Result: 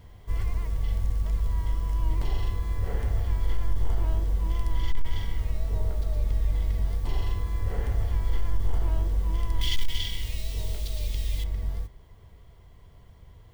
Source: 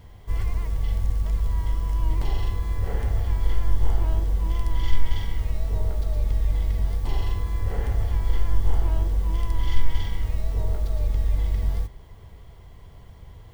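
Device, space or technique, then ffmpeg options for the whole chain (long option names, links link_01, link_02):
clipper into limiter: -filter_complex "[0:a]bandreject=frequency=820:width=18,asettb=1/sr,asplit=3[link_01][link_02][link_03];[link_01]atrim=end=9.614[link_04];[link_02]atrim=start=9.61:end=11.44,asetpts=PTS-STARTPTS,afade=type=in:duration=0.004:curve=qsin,afade=type=out:start_time=1.826:duration=0.004:curve=qsin,highshelf=frequency=2000:width_type=q:width=1.5:gain=13.5[link_05];[link_03]atrim=start=11.436[link_06];[link_04][link_05]acrossfade=duration=0.004:curve1=hsin:curve2=qsin[link_07];[link_07][link_06]acrossfade=duration=0.004:curve1=qsin:curve2=hsin,asoftclip=type=hard:threshold=-9.5dB,alimiter=limit=-13dB:level=0:latency=1:release=15,volume=-2.5dB"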